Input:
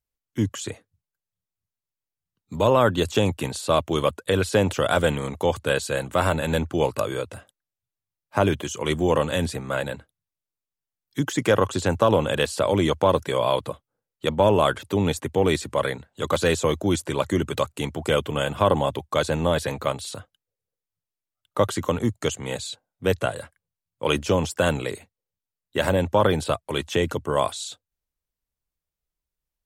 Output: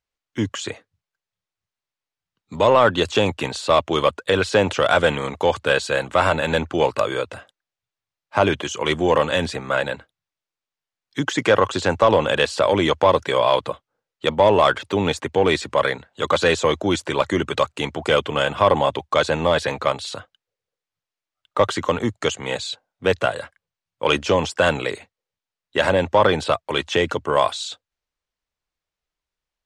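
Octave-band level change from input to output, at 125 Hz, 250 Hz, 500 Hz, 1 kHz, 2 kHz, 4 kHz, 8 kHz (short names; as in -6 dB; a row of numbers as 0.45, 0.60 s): -2.0, +0.5, +3.5, +5.5, +6.5, +5.5, -0.5 dB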